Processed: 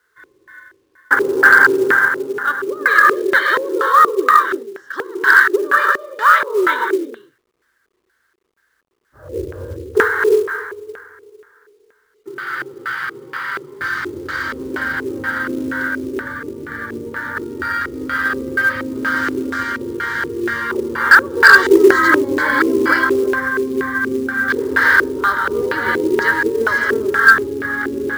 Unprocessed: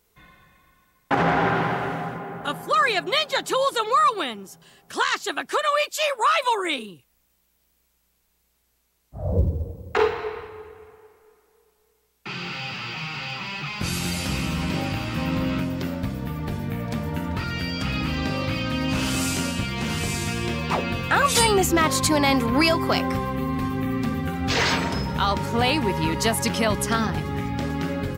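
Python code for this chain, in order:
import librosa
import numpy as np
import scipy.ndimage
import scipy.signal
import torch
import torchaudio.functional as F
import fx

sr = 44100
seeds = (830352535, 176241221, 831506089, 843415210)

y = fx.highpass(x, sr, hz=55.0, slope=6)
y = fx.high_shelf(y, sr, hz=3400.0, db=7.5)
y = fx.fixed_phaser(y, sr, hz=700.0, stages=6)
y = fx.rev_gated(y, sr, seeds[0], gate_ms=370, shape='rising', drr_db=-1.0)
y = fx.filter_lfo_lowpass(y, sr, shape='square', hz=2.1, low_hz=390.0, high_hz=1600.0, q=6.5)
y = fx.weighting(y, sr, curve='D')
y = fx.quant_companded(y, sr, bits=6)
y = y * 10.0 ** (-1.0 / 20.0)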